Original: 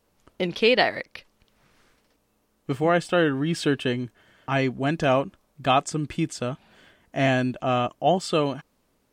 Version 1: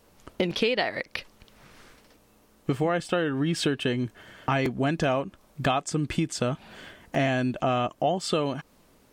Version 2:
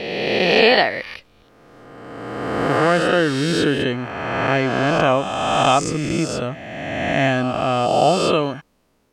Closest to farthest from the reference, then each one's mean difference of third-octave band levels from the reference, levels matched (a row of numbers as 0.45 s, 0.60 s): 1, 2; 3.5 dB, 8.0 dB